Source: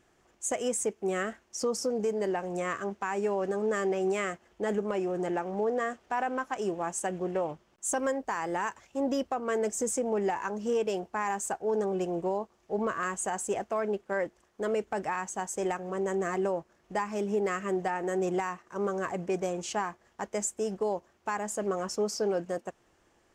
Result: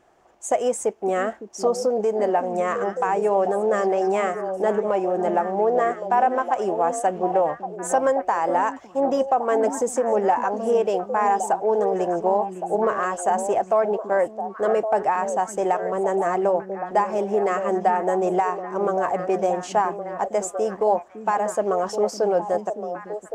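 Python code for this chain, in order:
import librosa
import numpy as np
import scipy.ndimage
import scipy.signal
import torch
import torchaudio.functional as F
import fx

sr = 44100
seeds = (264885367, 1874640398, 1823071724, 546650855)

y = fx.peak_eq(x, sr, hz=720.0, db=13.5, octaves=1.6)
y = fx.echo_stepped(y, sr, ms=558, hz=230.0, octaves=1.4, feedback_pct=70, wet_db=-4.0)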